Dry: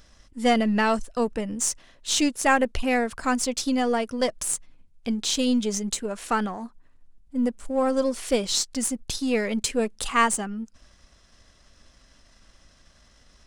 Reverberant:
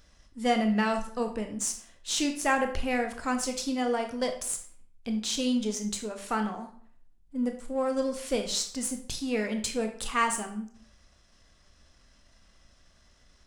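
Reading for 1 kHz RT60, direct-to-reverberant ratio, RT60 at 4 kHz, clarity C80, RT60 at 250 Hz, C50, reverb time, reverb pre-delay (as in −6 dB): 0.55 s, 5.0 dB, 0.40 s, 13.5 dB, 0.50 s, 9.5 dB, 0.55 s, 19 ms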